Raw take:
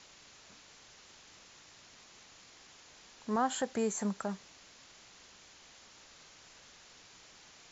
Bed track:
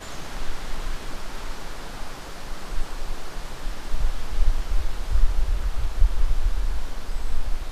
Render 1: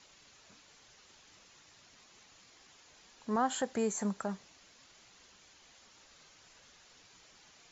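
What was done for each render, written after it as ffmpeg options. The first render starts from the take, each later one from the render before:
ffmpeg -i in.wav -af "afftdn=noise_reduction=6:noise_floor=-58" out.wav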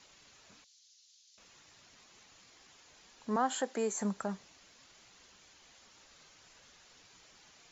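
ffmpeg -i in.wav -filter_complex "[0:a]asettb=1/sr,asplit=3[link_01][link_02][link_03];[link_01]atrim=end=0.644[link_04];[link_02]atrim=start=0.64:end=1.38,asetpts=PTS-STARTPTS,afade=type=in:duration=0.004:curve=qsin,afade=type=out:start_time=0.736:duration=0.004:curve=qsin,asuperpass=centerf=5300:order=4:qfactor=1.5[link_05];[link_03]atrim=start=1.376[link_06];[link_04][link_05]acrossfade=duration=0.004:curve1=hsin:curve2=qsin[link_07];[link_07][link_06]acrossfade=duration=0.004:curve1=qsin:curve2=hsin,asettb=1/sr,asplit=3[link_08][link_09][link_10];[link_08]atrim=end=3.364[link_11];[link_09]atrim=start=3.36:end=4,asetpts=PTS-STARTPTS,afade=type=in:duration=0.004:curve=qsin,afade=type=out:start_time=0.636:duration=0.004:curve=qsin,highpass=frequency=240:width=0.5412,highpass=frequency=240:width=1.3066[link_12];[link_10]atrim=start=3.996[link_13];[link_11][link_12]acrossfade=duration=0.004:curve1=hsin:curve2=qsin[link_14];[link_14][link_13]acrossfade=duration=0.004:curve1=qsin:curve2=hsin" out.wav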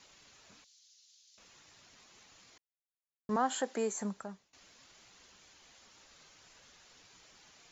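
ffmpeg -i in.wav -filter_complex "[0:a]asplit=4[link_01][link_02][link_03][link_04];[link_01]atrim=end=2.58,asetpts=PTS-STARTPTS,afade=type=out:start_time=2.576:duration=0.004:curve=hsin[link_05];[link_02]atrim=start=2.58:end=3.29,asetpts=PTS-STARTPTS,volume=0[link_06];[link_03]atrim=start=3.29:end=4.53,asetpts=PTS-STARTPTS,afade=type=in:duration=0.004:curve=hsin,afade=type=out:start_time=0.53:duration=0.71:silence=0.0794328[link_07];[link_04]atrim=start=4.53,asetpts=PTS-STARTPTS,afade=type=in:duration=0.004:curve=hsin:silence=0.0794328[link_08];[link_05][link_06][link_07][link_08]concat=n=4:v=0:a=1" out.wav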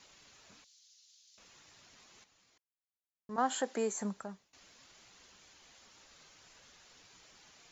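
ffmpeg -i in.wav -filter_complex "[0:a]asplit=3[link_01][link_02][link_03];[link_01]atrim=end=2.242[link_04];[link_02]atrim=start=2.238:end=3.382,asetpts=PTS-STARTPTS,volume=-9.5dB[link_05];[link_03]atrim=start=3.378[link_06];[link_04][link_05]acrossfade=duration=0.004:curve1=hsin:curve2=hsin[link_07];[link_07][link_06]acrossfade=duration=0.004:curve1=hsin:curve2=hsin" out.wav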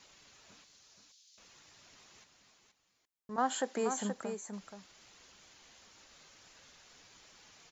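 ffmpeg -i in.wav -af "aecho=1:1:476:0.447" out.wav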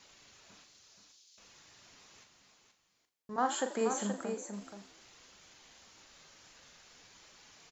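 ffmpeg -i in.wav -filter_complex "[0:a]asplit=2[link_01][link_02];[link_02]adelay=40,volume=-8dB[link_03];[link_01][link_03]amix=inputs=2:normalize=0,asplit=6[link_04][link_05][link_06][link_07][link_08][link_09];[link_05]adelay=84,afreqshift=63,volume=-15.5dB[link_10];[link_06]adelay=168,afreqshift=126,volume=-20.5dB[link_11];[link_07]adelay=252,afreqshift=189,volume=-25.6dB[link_12];[link_08]adelay=336,afreqshift=252,volume=-30.6dB[link_13];[link_09]adelay=420,afreqshift=315,volume=-35.6dB[link_14];[link_04][link_10][link_11][link_12][link_13][link_14]amix=inputs=6:normalize=0" out.wav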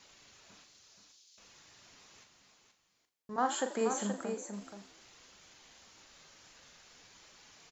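ffmpeg -i in.wav -af anull out.wav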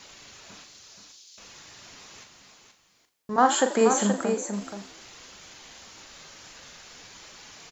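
ffmpeg -i in.wav -af "volume=11.5dB" out.wav

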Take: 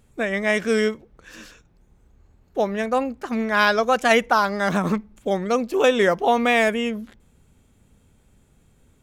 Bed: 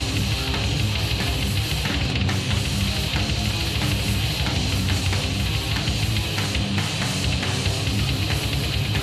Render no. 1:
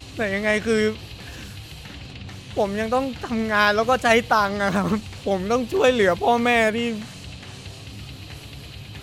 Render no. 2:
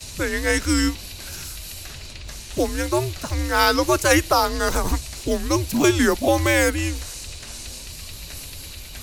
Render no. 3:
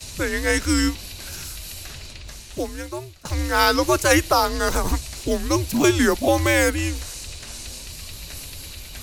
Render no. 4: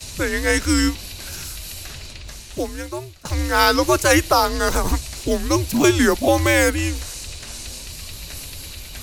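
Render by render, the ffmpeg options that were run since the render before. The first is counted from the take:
ffmpeg -i in.wav -i bed.wav -filter_complex "[1:a]volume=-15dB[link_01];[0:a][link_01]amix=inputs=2:normalize=0" out.wav
ffmpeg -i in.wav -filter_complex "[0:a]acrossover=split=340|1100|1900[link_01][link_02][link_03][link_04];[link_04]aexciter=amount=2.9:drive=8.1:freq=4700[link_05];[link_01][link_02][link_03][link_05]amix=inputs=4:normalize=0,afreqshift=-150" out.wav
ffmpeg -i in.wav -filter_complex "[0:a]asplit=2[link_01][link_02];[link_01]atrim=end=3.25,asetpts=PTS-STARTPTS,afade=type=out:start_time=1.96:duration=1.29:silence=0.105925[link_03];[link_02]atrim=start=3.25,asetpts=PTS-STARTPTS,afade=type=in:duration=0.004:curve=hsin:silence=0.105925[link_04];[link_03][link_04]concat=n=2:v=0:a=1" out.wav
ffmpeg -i in.wav -af "volume=2dB,alimiter=limit=-3dB:level=0:latency=1" out.wav

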